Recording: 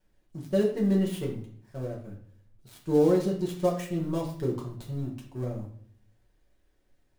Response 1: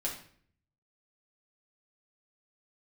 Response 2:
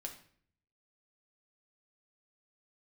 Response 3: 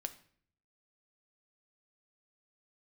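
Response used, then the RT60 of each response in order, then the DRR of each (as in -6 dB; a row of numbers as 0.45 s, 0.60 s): 1; 0.55 s, 0.55 s, 0.55 s; -3.5 dB, 2.0 dB, 8.5 dB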